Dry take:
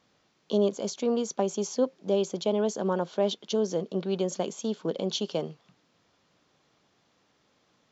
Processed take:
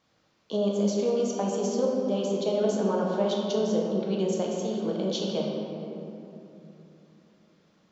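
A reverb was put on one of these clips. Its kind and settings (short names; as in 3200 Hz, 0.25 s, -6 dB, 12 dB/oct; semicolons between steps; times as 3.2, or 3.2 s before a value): shoebox room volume 130 m³, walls hard, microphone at 0.55 m; gain -3.5 dB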